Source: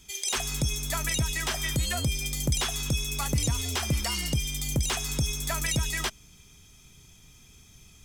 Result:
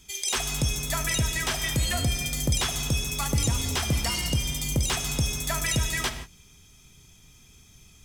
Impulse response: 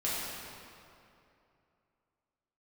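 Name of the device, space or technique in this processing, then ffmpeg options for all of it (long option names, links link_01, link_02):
keyed gated reverb: -filter_complex "[0:a]asplit=3[link_01][link_02][link_03];[1:a]atrim=start_sample=2205[link_04];[link_02][link_04]afir=irnorm=-1:irlink=0[link_05];[link_03]apad=whole_len=354835[link_06];[link_05][link_06]sidechaingate=range=-33dB:threshold=-46dB:ratio=16:detection=peak,volume=-13dB[link_07];[link_01][link_07]amix=inputs=2:normalize=0"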